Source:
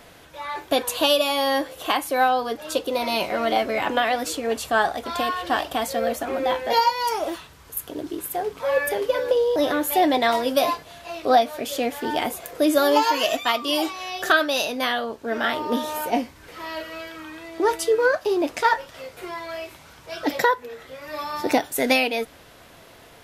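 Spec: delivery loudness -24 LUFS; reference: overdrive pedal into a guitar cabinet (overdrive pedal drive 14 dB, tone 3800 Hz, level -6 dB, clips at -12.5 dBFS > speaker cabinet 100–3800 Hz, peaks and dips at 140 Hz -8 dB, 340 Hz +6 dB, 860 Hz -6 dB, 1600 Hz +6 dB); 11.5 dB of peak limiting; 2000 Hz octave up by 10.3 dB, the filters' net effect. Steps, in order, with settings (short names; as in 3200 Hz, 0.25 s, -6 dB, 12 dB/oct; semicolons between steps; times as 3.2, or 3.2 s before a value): bell 2000 Hz +9 dB; limiter -12.5 dBFS; overdrive pedal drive 14 dB, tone 3800 Hz, level -6 dB, clips at -12.5 dBFS; speaker cabinet 100–3800 Hz, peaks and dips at 140 Hz -8 dB, 340 Hz +6 dB, 860 Hz -6 dB, 1600 Hz +6 dB; gain -4 dB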